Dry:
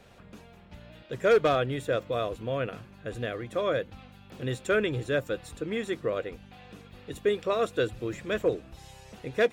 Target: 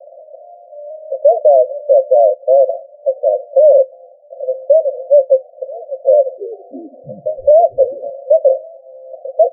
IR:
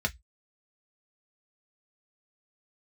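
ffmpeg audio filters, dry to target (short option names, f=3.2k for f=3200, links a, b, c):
-filter_complex "[0:a]asuperpass=centerf=600:order=12:qfactor=3.4,asettb=1/sr,asplit=3[a][b][c];[a]atrim=end=6.054[d];[b]atrim=start=6.05:end=8.1,asetpts=PTS-STARTPTS,afade=t=in:d=0.004:c=qsin,afade=t=out:st=2.046:d=0.004:c=qsin,asplit=6[e][f][g][h][i][j];[f]adelay=328,afreqshift=-130,volume=-19dB[k];[g]adelay=656,afreqshift=-260,volume=-24dB[l];[h]adelay=984,afreqshift=-390,volume=-29.1dB[m];[i]adelay=1312,afreqshift=-520,volume=-34.1dB[n];[j]adelay=1640,afreqshift=-650,volume=-39.1dB[o];[e][k][l][m][n][o]amix=inputs=6:normalize=0,atrim=end_sample=90405[p];[c]atrim=start=8.096[q];[d][p]acrossfade=d=0.004:c1=hsin:c2=qsin[r];[r][q]acrossfade=d=0.004:c1=qsin:c2=hsin,alimiter=level_in=27.5dB:limit=-1dB:release=50:level=0:latency=1,volume=-1dB"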